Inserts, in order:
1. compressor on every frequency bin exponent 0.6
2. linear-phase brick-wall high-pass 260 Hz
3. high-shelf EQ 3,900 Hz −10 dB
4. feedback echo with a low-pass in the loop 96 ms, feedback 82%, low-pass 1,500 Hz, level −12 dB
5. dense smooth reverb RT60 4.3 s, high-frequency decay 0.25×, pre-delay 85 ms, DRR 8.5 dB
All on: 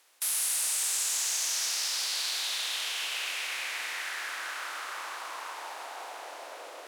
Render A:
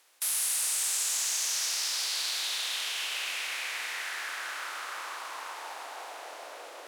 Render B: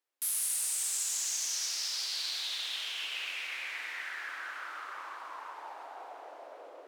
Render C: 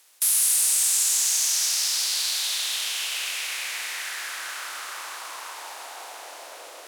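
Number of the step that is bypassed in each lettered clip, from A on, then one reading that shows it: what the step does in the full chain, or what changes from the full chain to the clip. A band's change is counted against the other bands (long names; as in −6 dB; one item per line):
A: 4, echo-to-direct ratio −6.5 dB to −8.5 dB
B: 1, change in momentary loudness spread +2 LU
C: 3, 8 kHz band +6.5 dB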